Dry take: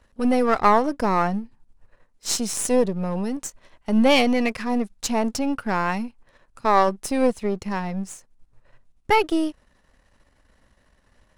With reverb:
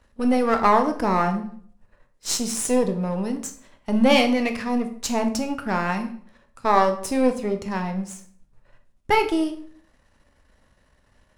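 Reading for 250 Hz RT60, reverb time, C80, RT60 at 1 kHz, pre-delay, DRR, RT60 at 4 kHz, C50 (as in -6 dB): 0.60 s, 0.55 s, 14.5 dB, 0.50 s, 13 ms, 6.0 dB, 0.45 s, 11.0 dB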